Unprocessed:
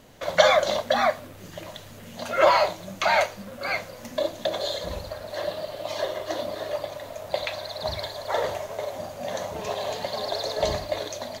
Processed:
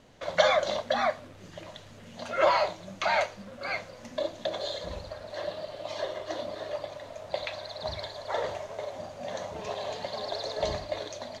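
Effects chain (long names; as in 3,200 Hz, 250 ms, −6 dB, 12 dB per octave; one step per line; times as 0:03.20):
low-pass filter 6,800 Hz 12 dB per octave
level −5 dB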